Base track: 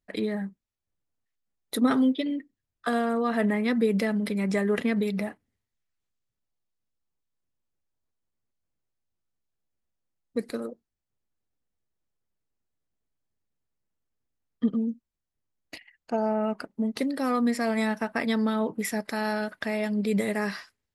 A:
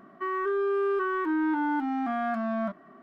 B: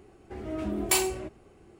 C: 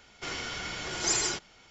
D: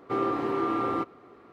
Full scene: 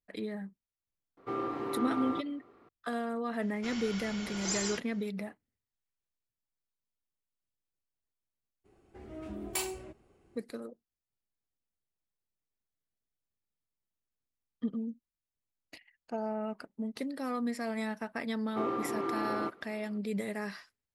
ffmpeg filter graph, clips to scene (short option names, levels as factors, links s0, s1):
-filter_complex "[4:a]asplit=2[s0][s1];[0:a]volume=0.355[s2];[s1]highpass=120[s3];[s0]atrim=end=1.52,asetpts=PTS-STARTPTS,volume=0.422,afade=t=in:d=0.004:c=hsin,afade=t=out:st=1.516:d=0.004:c=hsin,adelay=1170[s4];[3:a]atrim=end=1.7,asetpts=PTS-STARTPTS,volume=0.447,afade=t=in:d=0.004:c=hsin,afade=t=out:st=1.696:d=0.004:c=hsin,adelay=150381S[s5];[2:a]atrim=end=1.79,asetpts=PTS-STARTPTS,volume=0.316,afade=t=in:d=0.02,afade=t=out:st=1.77:d=0.02,adelay=8640[s6];[s3]atrim=end=1.52,asetpts=PTS-STARTPTS,volume=0.473,afade=t=in:d=0.004:c=hsin,afade=t=out:st=1.516:d=0.004:c=hsin,adelay=18460[s7];[s2][s4][s5][s6][s7]amix=inputs=5:normalize=0"